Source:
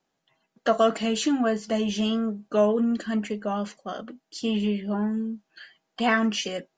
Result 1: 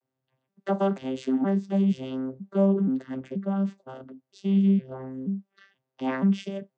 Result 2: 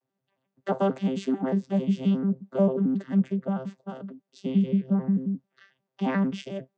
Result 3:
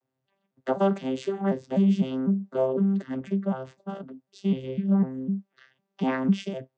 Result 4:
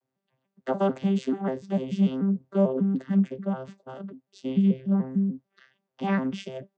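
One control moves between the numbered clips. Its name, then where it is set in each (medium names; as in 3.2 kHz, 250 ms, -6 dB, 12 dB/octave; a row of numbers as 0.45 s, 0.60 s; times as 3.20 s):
vocoder on a broken chord, a note every: 478 ms, 89 ms, 251 ms, 147 ms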